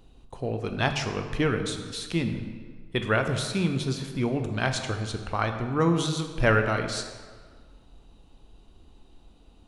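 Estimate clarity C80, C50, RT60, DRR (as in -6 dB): 9.0 dB, 7.5 dB, 1.7 s, 5.5 dB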